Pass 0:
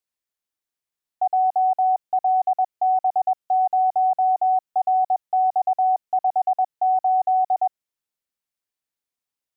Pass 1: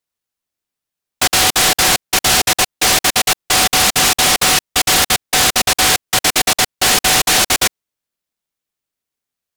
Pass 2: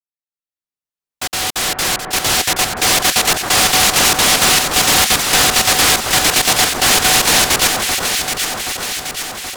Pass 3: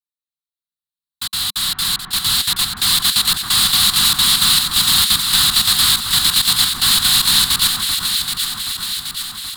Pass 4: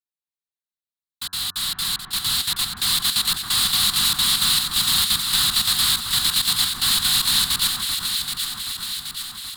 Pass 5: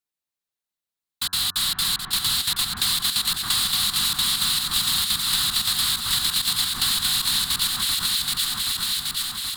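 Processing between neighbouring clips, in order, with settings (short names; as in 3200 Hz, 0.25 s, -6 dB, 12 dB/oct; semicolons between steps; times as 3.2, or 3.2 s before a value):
noise-modulated delay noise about 3100 Hz, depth 0.36 ms; gain +6 dB
opening faded in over 3.17 s; echo with dull and thin repeats by turns 0.388 s, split 1600 Hz, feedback 77%, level -3.5 dB
EQ curve 200 Hz 0 dB, 570 Hz -27 dB, 1100 Hz -1 dB, 1500 Hz -3 dB, 2400 Hz -8 dB, 4000 Hz +11 dB, 5900 Hz -9 dB, 8600 Hz +3 dB; gain -3.5 dB
de-hum 91.79 Hz, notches 19; gain -5.5 dB
compressor, threshold -24 dBFS, peak gain reduction 9 dB; gain +4.5 dB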